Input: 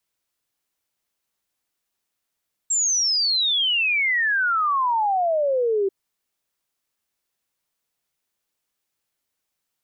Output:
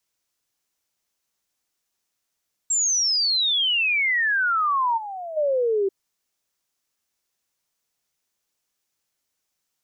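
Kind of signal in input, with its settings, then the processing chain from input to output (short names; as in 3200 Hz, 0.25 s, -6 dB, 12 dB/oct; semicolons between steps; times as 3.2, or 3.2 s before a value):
log sweep 7600 Hz -> 380 Hz 3.19 s -18 dBFS
spectral gain 4.98–5.37, 300–6200 Hz -12 dB; bell 6100 Hz +5 dB 0.76 oct; limiter -18.5 dBFS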